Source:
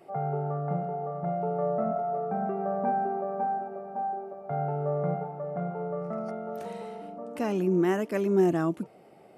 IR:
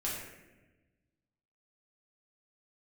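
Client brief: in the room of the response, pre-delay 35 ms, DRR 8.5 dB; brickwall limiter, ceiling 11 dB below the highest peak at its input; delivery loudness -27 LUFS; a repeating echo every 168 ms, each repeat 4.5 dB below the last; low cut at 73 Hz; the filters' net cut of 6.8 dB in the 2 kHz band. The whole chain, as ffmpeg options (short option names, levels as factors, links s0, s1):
-filter_complex "[0:a]highpass=73,equalizer=f=2000:t=o:g=-9,alimiter=level_in=1.12:limit=0.0631:level=0:latency=1,volume=0.891,aecho=1:1:168|336|504|672|840|1008|1176|1344|1512:0.596|0.357|0.214|0.129|0.0772|0.0463|0.0278|0.0167|0.01,asplit=2[s0][s1];[1:a]atrim=start_sample=2205,adelay=35[s2];[s1][s2]afir=irnorm=-1:irlink=0,volume=0.237[s3];[s0][s3]amix=inputs=2:normalize=0,volume=1.88"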